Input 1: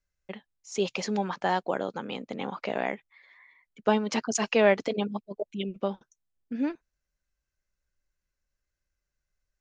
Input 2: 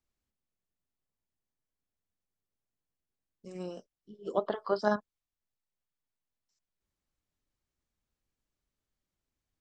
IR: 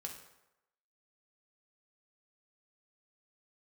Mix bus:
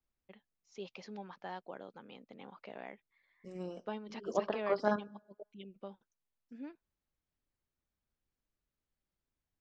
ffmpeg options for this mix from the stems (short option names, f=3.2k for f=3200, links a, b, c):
-filter_complex "[0:a]lowpass=f=5.4k:w=0.5412,lowpass=f=5.4k:w=1.3066,volume=-17.5dB[a];[1:a]highshelf=f=4.9k:g=-10.5,volume=-3.5dB,asplit=2[b][c];[c]volume=-14.5dB[d];[2:a]atrim=start_sample=2205[e];[d][e]afir=irnorm=-1:irlink=0[f];[a][b][f]amix=inputs=3:normalize=0"